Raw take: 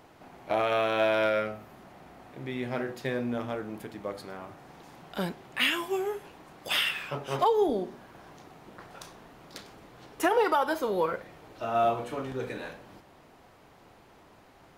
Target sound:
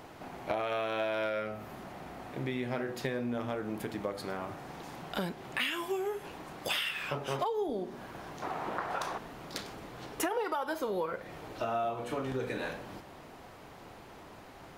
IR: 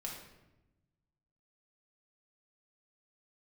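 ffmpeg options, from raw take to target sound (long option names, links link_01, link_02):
-filter_complex "[0:a]asettb=1/sr,asplit=3[link_01][link_02][link_03];[link_01]atrim=end=8.424[link_04];[link_02]atrim=start=8.42:end=9.18,asetpts=PTS-STARTPTS,afade=type=in:duration=0.004:curve=qsin,afade=type=out:start_time=0.756:duration=0.004:curve=qsin,equalizer=frequency=1000:width=0.45:gain=13.5[link_05];[link_03]atrim=start=9.176[link_06];[link_04][link_05]acrossfade=duration=0.004:curve1=hsin:curve2=qsin[link_07];[link_07][link_06]acrossfade=duration=0.004:curve1=qsin:curve2=hsin,acompressor=threshold=-37dB:ratio=5,volume=5.5dB"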